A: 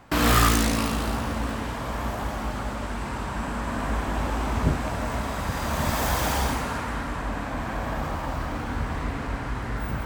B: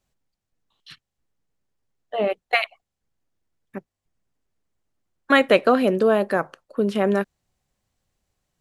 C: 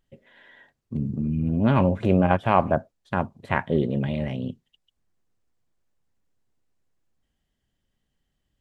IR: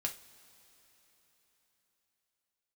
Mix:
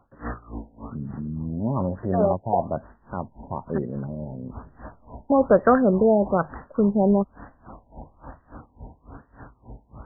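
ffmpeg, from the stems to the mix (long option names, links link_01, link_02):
-filter_complex "[0:a]aeval=exprs='val(0)*pow(10,-24*(0.5-0.5*cos(2*PI*3.5*n/s))/20)':channel_layout=same,volume=-9dB[link_01];[1:a]asubboost=boost=5.5:cutoff=130,volume=2dB[link_02];[2:a]volume=-5.5dB,asplit=2[link_03][link_04];[link_04]apad=whole_len=443446[link_05];[link_01][link_05]sidechaincompress=threshold=-39dB:ratio=8:attack=35:release=162[link_06];[link_06][link_02][link_03]amix=inputs=3:normalize=0,afftfilt=real='re*lt(b*sr/1024,950*pow(2000/950,0.5+0.5*sin(2*PI*1.1*pts/sr)))':imag='im*lt(b*sr/1024,950*pow(2000/950,0.5+0.5*sin(2*PI*1.1*pts/sr)))':win_size=1024:overlap=0.75"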